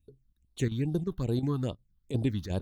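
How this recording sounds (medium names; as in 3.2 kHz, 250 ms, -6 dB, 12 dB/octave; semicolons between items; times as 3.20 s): chopped level 2.8 Hz, depth 65%, duty 90%; phasing stages 6, 2.4 Hz, lowest notch 550–2200 Hz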